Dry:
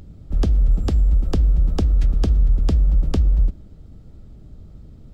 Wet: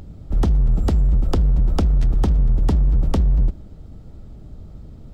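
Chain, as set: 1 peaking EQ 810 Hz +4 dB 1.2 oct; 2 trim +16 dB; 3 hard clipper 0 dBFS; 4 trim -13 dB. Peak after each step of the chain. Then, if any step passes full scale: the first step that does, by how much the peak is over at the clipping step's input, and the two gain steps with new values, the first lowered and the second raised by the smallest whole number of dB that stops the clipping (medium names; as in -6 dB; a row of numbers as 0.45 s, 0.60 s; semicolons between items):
-9.0 dBFS, +7.0 dBFS, 0.0 dBFS, -13.0 dBFS; step 2, 7.0 dB; step 2 +9 dB, step 4 -6 dB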